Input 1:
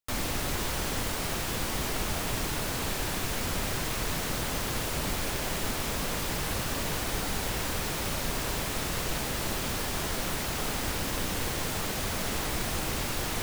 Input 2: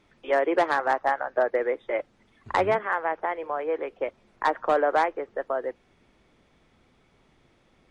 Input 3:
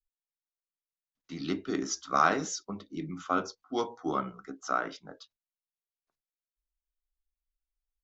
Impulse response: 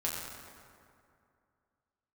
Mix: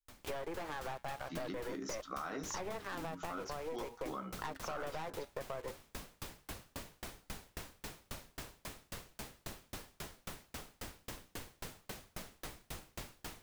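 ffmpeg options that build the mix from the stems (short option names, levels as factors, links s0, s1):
-filter_complex "[0:a]aeval=exprs='val(0)*pow(10,-38*if(lt(mod(3.7*n/s,1),2*abs(3.7)/1000),1-mod(3.7*n/s,1)/(2*abs(3.7)/1000),(mod(3.7*n/s,1)-2*abs(3.7)/1000)/(1-2*abs(3.7)/1000))/20)':c=same,volume=0.376[s0];[1:a]aeval=exprs='val(0)+0.00447*(sin(2*PI*60*n/s)+sin(2*PI*2*60*n/s)/2+sin(2*PI*3*60*n/s)/3+sin(2*PI*4*60*n/s)/4+sin(2*PI*5*60*n/s)/5)':c=same,aeval=exprs='val(0)*gte(abs(val(0)),0.015)':c=same,aeval=exprs='(tanh(17.8*val(0)+0.7)-tanh(0.7))/17.8':c=same,volume=1.41[s1];[2:a]volume=1.26[s2];[s1][s2]amix=inputs=2:normalize=0,flanger=delay=3.8:depth=4:regen=-74:speed=0.47:shape=sinusoidal,alimiter=level_in=1.06:limit=0.0631:level=0:latency=1:release=24,volume=0.944,volume=1[s3];[s0][s3]amix=inputs=2:normalize=0,acompressor=threshold=0.0126:ratio=6"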